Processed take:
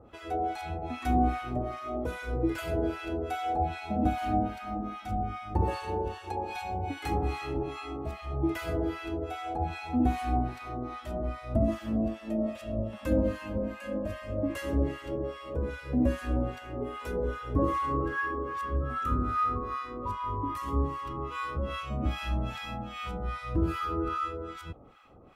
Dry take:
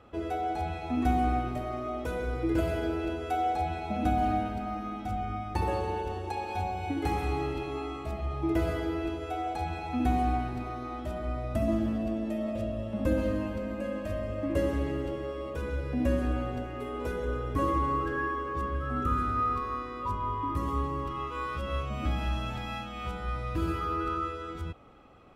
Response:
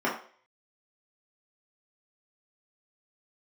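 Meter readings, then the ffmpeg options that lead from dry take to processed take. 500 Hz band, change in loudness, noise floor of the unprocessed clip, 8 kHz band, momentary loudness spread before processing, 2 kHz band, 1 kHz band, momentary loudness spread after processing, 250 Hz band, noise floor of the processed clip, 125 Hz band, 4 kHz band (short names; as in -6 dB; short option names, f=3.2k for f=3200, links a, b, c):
-0.5 dB, -0.5 dB, -39 dBFS, n/a, 7 LU, +0.5 dB, -1.0 dB, 8 LU, 0.0 dB, -46 dBFS, 0.0 dB, 0.0 dB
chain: -filter_complex "[0:a]acrossover=split=960[a][b];[a]aeval=exprs='val(0)*(1-1/2+1/2*cos(2*PI*2.5*n/s))':c=same[c];[b]aeval=exprs='val(0)*(1-1/2-1/2*cos(2*PI*2.5*n/s))':c=same[d];[c][d]amix=inputs=2:normalize=0,volume=4.5dB"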